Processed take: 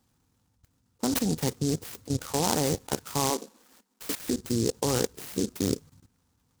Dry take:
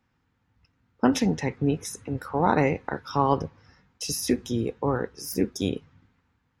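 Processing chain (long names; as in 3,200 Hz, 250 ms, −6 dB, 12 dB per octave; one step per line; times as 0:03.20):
output level in coarse steps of 15 dB
0:03.30–0:04.20: Chebyshev band-pass filter 210–6,100 Hz, order 5
short delay modulated by noise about 5,900 Hz, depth 0.14 ms
level +4.5 dB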